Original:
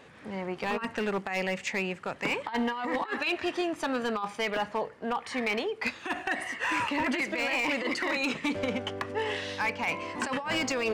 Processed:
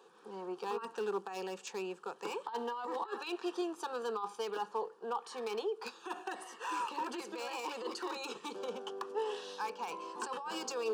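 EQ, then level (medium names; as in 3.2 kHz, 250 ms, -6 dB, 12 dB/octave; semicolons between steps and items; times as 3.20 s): ladder high-pass 260 Hz, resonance 25%; static phaser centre 410 Hz, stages 8; +1.0 dB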